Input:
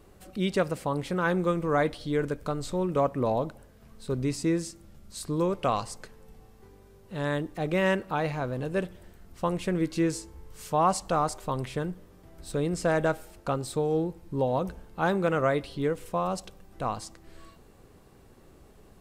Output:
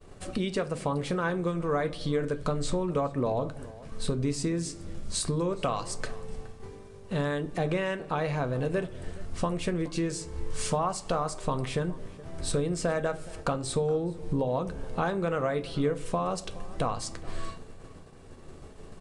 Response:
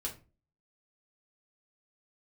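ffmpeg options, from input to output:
-filter_complex "[0:a]agate=range=-33dB:threshold=-48dB:ratio=3:detection=peak,acompressor=threshold=-38dB:ratio=6,asplit=2[link_01][link_02];[link_02]adelay=419.8,volume=-19dB,highshelf=frequency=4000:gain=-9.45[link_03];[link_01][link_03]amix=inputs=2:normalize=0,asplit=2[link_04][link_05];[1:a]atrim=start_sample=2205[link_06];[link_05][link_06]afir=irnorm=-1:irlink=0,volume=-5.5dB[link_07];[link_04][link_07]amix=inputs=2:normalize=0,aresample=22050,aresample=44100,volume=8.5dB"

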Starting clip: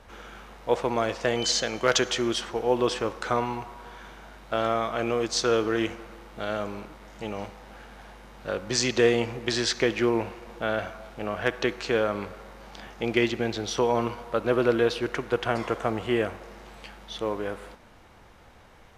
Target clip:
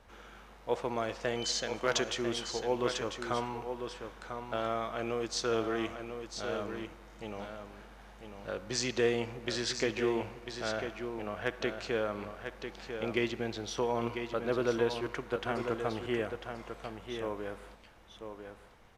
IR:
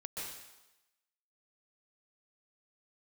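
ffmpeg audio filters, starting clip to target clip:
-filter_complex "[0:a]asettb=1/sr,asplit=3[link_01][link_02][link_03];[link_01]atrim=end=16.974[link_04];[link_02]atrim=start=16.97:end=17.37,asetpts=PTS-STARTPTS,afade=type=in:duration=0.004:curve=qsin,afade=type=out:start_time=0.396:duration=0.004:curve=qsin,equalizer=frequency=4400:width=6:gain=-11.5[link_05];[link_03]atrim=start=17.366[link_06];[link_04][link_05]acrossfade=duration=0.004:curve1=hsin:curve2=qsin[link_07];[link_07][link_06]acrossfade=duration=0.004:curve1=qsin:curve2=hsin,aecho=1:1:996:0.422,volume=-8dB"

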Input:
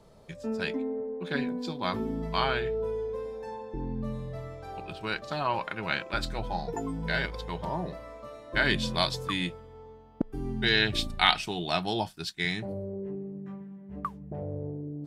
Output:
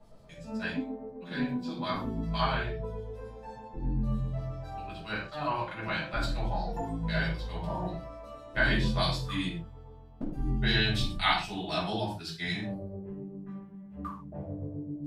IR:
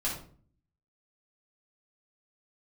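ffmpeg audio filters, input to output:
-filter_complex "[0:a]asettb=1/sr,asplit=3[link_01][link_02][link_03];[link_01]atrim=end=5.004[link_04];[link_02]atrim=start=5:end=5.71,asetpts=PTS-STARTPTS,afade=type=in:duration=0.004:curve=qsin,afade=type=out:start_time=0.706:duration=0.004:curve=qsin,agate=range=-33dB:threshold=-32dB:ratio=3:detection=peak[link_05];[link_03]atrim=start=5.706[link_06];[link_04][link_05]acrossfade=duration=0.004:curve1=hsin:curve2=qsin[link_07];[link_07][link_06]acrossfade=duration=0.004:curve1=qsin:curve2=hsin,acrossover=split=2500[link_08][link_09];[link_08]aeval=exprs='val(0)*(1-0.7/2+0.7/2*cos(2*PI*7.8*n/s))':channel_layout=same[link_10];[link_09]aeval=exprs='val(0)*(1-0.7/2-0.7/2*cos(2*PI*7.8*n/s))':channel_layout=same[link_11];[link_10][link_11]amix=inputs=2:normalize=0[link_12];[1:a]atrim=start_sample=2205,afade=type=out:start_time=0.2:duration=0.01,atrim=end_sample=9261[link_13];[link_12][link_13]afir=irnorm=-1:irlink=0,volume=-4.5dB"

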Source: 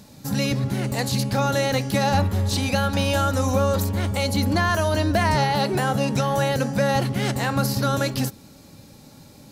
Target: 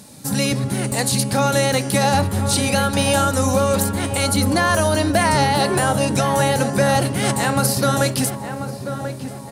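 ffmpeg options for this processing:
ffmpeg -i in.wav -filter_complex "[0:a]highpass=frequency=120:poles=1,equalizer=frequency=9200:width_type=o:width=0.4:gain=14,asplit=2[link_01][link_02];[link_02]adelay=1038,lowpass=frequency=1500:poles=1,volume=-8.5dB,asplit=2[link_03][link_04];[link_04]adelay=1038,lowpass=frequency=1500:poles=1,volume=0.54,asplit=2[link_05][link_06];[link_06]adelay=1038,lowpass=frequency=1500:poles=1,volume=0.54,asplit=2[link_07][link_08];[link_08]adelay=1038,lowpass=frequency=1500:poles=1,volume=0.54,asplit=2[link_09][link_10];[link_10]adelay=1038,lowpass=frequency=1500:poles=1,volume=0.54,asplit=2[link_11][link_12];[link_12]adelay=1038,lowpass=frequency=1500:poles=1,volume=0.54[link_13];[link_03][link_05][link_07][link_09][link_11][link_13]amix=inputs=6:normalize=0[link_14];[link_01][link_14]amix=inputs=2:normalize=0,volume=4dB" out.wav

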